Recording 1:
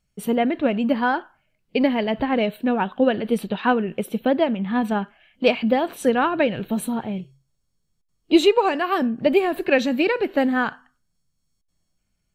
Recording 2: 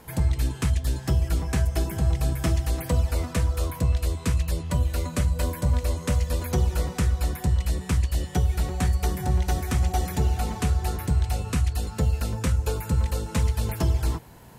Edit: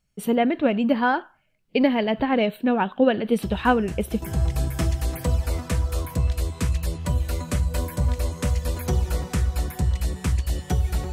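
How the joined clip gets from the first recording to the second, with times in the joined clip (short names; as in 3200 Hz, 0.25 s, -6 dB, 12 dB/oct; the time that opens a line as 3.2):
recording 1
3.42 add recording 2 from 1.07 s 0.80 s -11 dB
4.22 switch to recording 2 from 1.87 s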